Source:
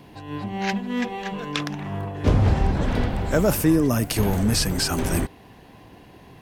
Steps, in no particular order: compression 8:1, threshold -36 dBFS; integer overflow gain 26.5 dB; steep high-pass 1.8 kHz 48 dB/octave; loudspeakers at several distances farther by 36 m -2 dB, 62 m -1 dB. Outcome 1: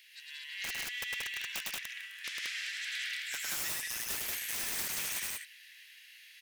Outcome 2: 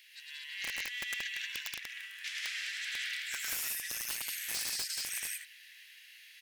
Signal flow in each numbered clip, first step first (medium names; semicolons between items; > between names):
steep high-pass > integer overflow > compression > loudspeakers at several distances; steep high-pass > compression > loudspeakers at several distances > integer overflow